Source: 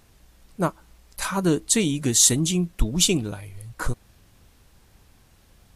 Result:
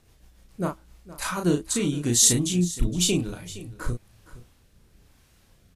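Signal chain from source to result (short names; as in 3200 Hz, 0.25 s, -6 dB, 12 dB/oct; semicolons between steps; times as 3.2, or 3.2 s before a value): rotary speaker horn 7 Hz, later 1 Hz, at 0.41; doubler 34 ms -4 dB; on a send: echo 0.466 s -17 dB; on the sum: gain -2 dB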